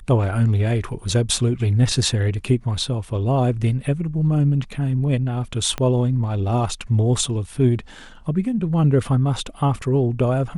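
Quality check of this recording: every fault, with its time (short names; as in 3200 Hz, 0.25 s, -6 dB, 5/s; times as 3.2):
5.78 pop -11 dBFS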